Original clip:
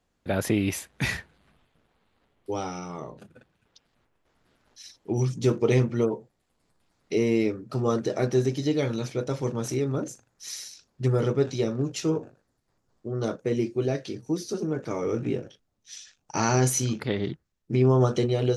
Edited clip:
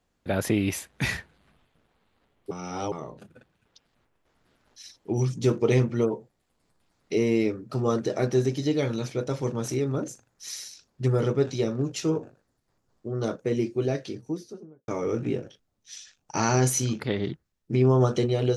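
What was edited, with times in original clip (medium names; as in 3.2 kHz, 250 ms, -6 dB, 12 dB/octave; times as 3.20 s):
2.51–2.92 s: reverse
13.97–14.88 s: studio fade out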